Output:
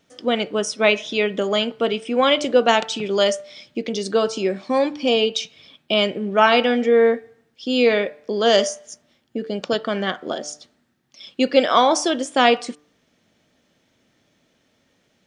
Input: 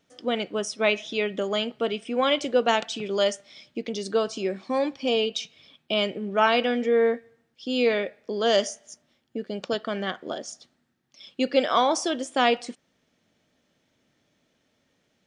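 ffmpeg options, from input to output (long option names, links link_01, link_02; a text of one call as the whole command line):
ffmpeg -i in.wav -af "bandreject=frequency=148.3:width_type=h:width=4,bandreject=frequency=296.6:width_type=h:width=4,bandreject=frequency=444.9:width_type=h:width=4,bandreject=frequency=593.2:width_type=h:width=4,bandreject=frequency=741.5:width_type=h:width=4,bandreject=frequency=889.8:width_type=h:width=4,bandreject=frequency=1038.1:width_type=h:width=4,bandreject=frequency=1186.4:width_type=h:width=4,bandreject=frequency=1334.7:width_type=h:width=4,bandreject=frequency=1483:width_type=h:width=4,bandreject=frequency=1631.3:width_type=h:width=4,volume=6dB" out.wav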